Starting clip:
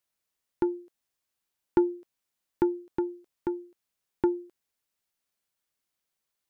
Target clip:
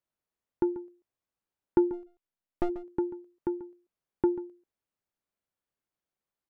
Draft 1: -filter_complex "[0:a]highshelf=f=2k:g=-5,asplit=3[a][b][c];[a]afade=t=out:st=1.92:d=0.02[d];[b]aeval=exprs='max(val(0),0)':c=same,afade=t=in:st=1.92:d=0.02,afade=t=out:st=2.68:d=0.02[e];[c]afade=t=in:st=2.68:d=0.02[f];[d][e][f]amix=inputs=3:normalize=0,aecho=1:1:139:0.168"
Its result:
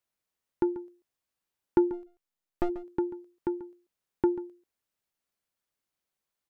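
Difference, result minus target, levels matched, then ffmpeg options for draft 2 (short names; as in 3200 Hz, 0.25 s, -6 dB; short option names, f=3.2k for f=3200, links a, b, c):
2000 Hz band +2.5 dB
-filter_complex "[0:a]highshelf=f=2k:g=-14.5,asplit=3[a][b][c];[a]afade=t=out:st=1.92:d=0.02[d];[b]aeval=exprs='max(val(0),0)':c=same,afade=t=in:st=1.92:d=0.02,afade=t=out:st=2.68:d=0.02[e];[c]afade=t=in:st=2.68:d=0.02[f];[d][e][f]amix=inputs=3:normalize=0,aecho=1:1:139:0.168"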